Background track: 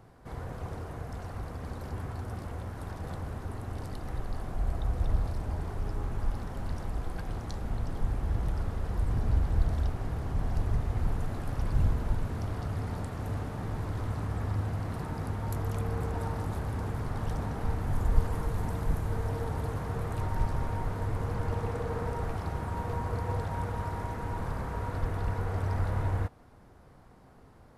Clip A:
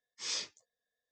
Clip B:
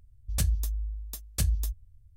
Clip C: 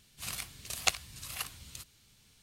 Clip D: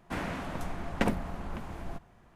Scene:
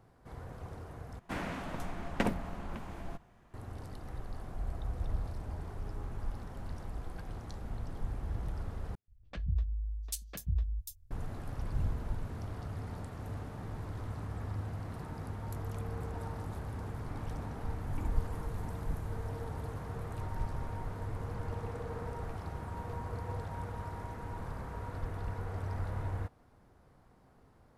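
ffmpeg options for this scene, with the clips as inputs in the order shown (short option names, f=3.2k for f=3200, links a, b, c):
-filter_complex "[4:a]asplit=2[a][b];[0:a]volume=-7dB[c];[2:a]acrossover=split=200|3000[d][e][f];[d]adelay=130[g];[f]adelay=790[h];[g][e][h]amix=inputs=3:normalize=0[i];[b]asplit=3[j][k][l];[j]bandpass=f=300:t=q:w=8,volume=0dB[m];[k]bandpass=f=870:t=q:w=8,volume=-6dB[n];[l]bandpass=f=2.24k:t=q:w=8,volume=-9dB[o];[m][n][o]amix=inputs=3:normalize=0[p];[c]asplit=3[q][r][s];[q]atrim=end=1.194[t];[a]atrim=end=2.35,asetpts=PTS-STARTPTS,volume=-3dB[u];[r]atrim=start=3.536:end=8.954[v];[i]atrim=end=2.16,asetpts=PTS-STARTPTS,volume=-5dB[w];[s]atrim=start=11.106[x];[p]atrim=end=2.35,asetpts=PTS-STARTPTS,volume=-8.5dB,afade=t=in:d=0.004:c=hsin,afade=t=out:st=2.346:d=0.004:c=hsin,adelay=16970[y];[t][u]acrossfade=d=0.004:c1=hsin:c2=hsin[z];[z][v]acrossfade=d=0.004:c1=hsin:c2=hsin[aa];[aa][w]acrossfade=d=0.004:c1=hsin:c2=hsin[ab];[ab][x]acrossfade=d=0.004:c1=hsin:c2=hsin[ac];[ac][y]amix=inputs=2:normalize=0"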